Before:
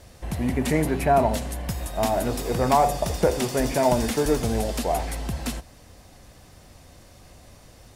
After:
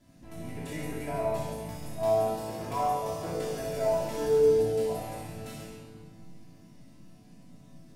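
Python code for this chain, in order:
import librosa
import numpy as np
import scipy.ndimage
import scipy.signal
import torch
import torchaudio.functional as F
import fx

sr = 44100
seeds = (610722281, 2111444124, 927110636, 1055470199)

y = fx.dereverb_blind(x, sr, rt60_s=0.59)
y = fx.resonator_bank(y, sr, root=45, chord='sus4', decay_s=0.85)
y = fx.dmg_noise_band(y, sr, seeds[0], low_hz=120.0, high_hz=270.0, level_db=-66.0)
y = fx.echo_multitap(y, sr, ms=(64, 134), db=(-5.5, -7.5))
y = fx.room_shoebox(y, sr, seeds[1], volume_m3=3200.0, walls='mixed', distance_m=3.0)
y = F.gain(torch.from_numpy(y), 4.0).numpy()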